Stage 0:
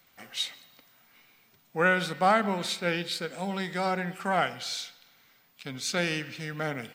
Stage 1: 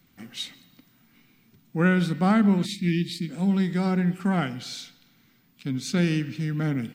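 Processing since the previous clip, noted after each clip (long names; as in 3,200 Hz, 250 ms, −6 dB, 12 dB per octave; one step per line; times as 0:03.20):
gain on a spectral selection 0:02.65–0:03.29, 350–1,700 Hz −27 dB
low shelf with overshoot 390 Hz +12.5 dB, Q 1.5
level −2.5 dB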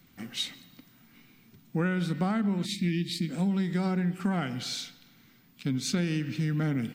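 downward compressor 6 to 1, threshold −27 dBFS, peak gain reduction 11 dB
level +2 dB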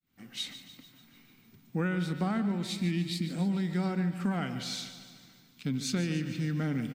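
fade in at the beginning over 0.50 s
repeating echo 147 ms, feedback 59%, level −12.5 dB
level −2.5 dB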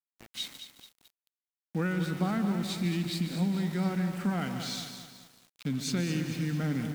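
centre clipping without the shift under −42.5 dBFS
feedback echo at a low word length 217 ms, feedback 55%, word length 8 bits, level −8.5 dB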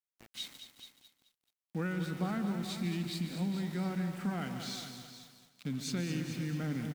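single-tap delay 426 ms −13 dB
level −5 dB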